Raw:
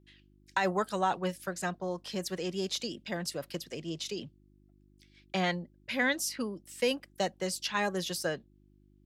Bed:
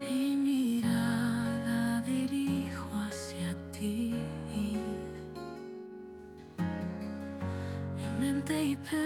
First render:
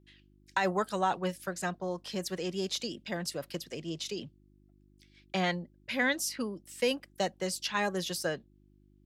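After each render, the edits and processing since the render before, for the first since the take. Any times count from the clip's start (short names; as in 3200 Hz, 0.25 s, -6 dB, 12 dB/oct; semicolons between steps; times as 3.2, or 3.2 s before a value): nothing audible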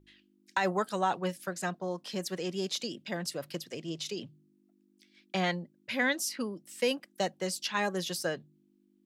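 de-hum 50 Hz, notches 3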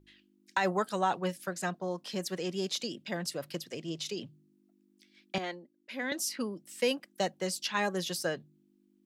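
5.38–6.12 ladder high-pass 240 Hz, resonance 40%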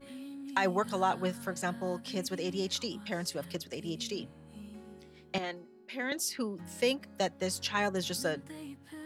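add bed -14 dB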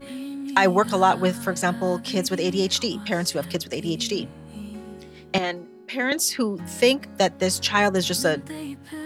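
gain +11 dB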